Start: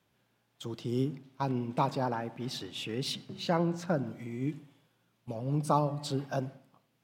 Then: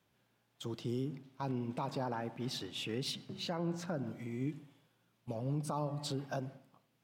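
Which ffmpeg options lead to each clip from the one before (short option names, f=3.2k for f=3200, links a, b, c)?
-af "alimiter=level_in=1.5dB:limit=-24dB:level=0:latency=1:release=142,volume=-1.5dB,volume=-2dB"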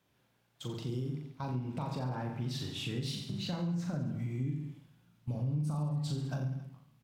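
-af "asubboost=boost=6:cutoff=180,aecho=1:1:40|86|138.9|199.7|269.7:0.631|0.398|0.251|0.158|0.1,acompressor=threshold=-33dB:ratio=3"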